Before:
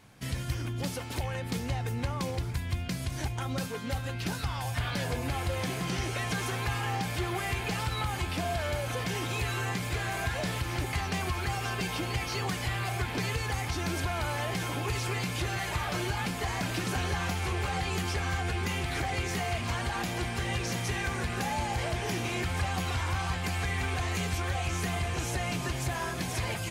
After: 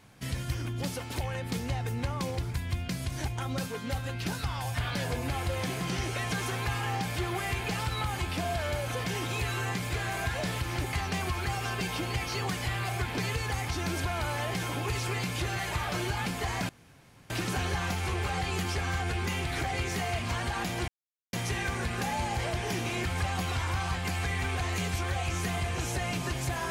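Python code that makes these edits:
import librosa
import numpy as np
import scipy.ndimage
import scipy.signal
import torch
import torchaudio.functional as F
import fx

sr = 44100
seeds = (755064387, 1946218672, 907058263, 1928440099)

y = fx.edit(x, sr, fx.insert_room_tone(at_s=16.69, length_s=0.61),
    fx.silence(start_s=20.27, length_s=0.45), tone=tone)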